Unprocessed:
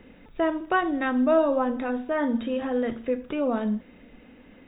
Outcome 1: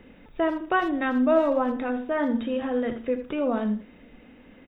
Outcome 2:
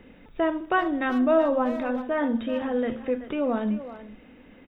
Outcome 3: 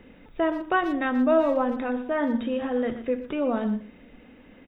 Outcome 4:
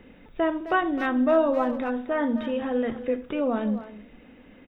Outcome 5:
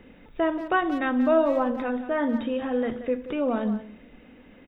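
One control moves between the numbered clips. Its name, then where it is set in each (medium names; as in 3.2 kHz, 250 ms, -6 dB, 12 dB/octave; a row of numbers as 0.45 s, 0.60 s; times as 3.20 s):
speakerphone echo, time: 80 ms, 380 ms, 120 ms, 260 ms, 180 ms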